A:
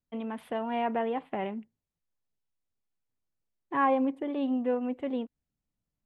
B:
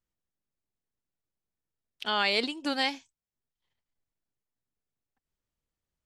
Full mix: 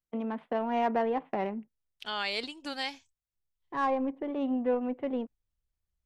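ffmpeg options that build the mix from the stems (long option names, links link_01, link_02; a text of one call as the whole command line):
ffmpeg -i stem1.wav -i stem2.wav -filter_complex "[0:a]agate=range=-20dB:threshold=-45dB:ratio=16:detection=peak,highpass=frequency=140:width=0.5412,highpass=frequency=140:width=1.3066,adynamicsmooth=sensitivity=2.5:basefreq=2000,volume=2.5dB[link_01];[1:a]volume=-6dB,asplit=2[link_02][link_03];[link_03]apad=whole_len=266930[link_04];[link_01][link_04]sidechaincompress=threshold=-42dB:ratio=8:attack=16:release=1430[link_05];[link_05][link_02]amix=inputs=2:normalize=0,asubboost=boost=6:cutoff=97" out.wav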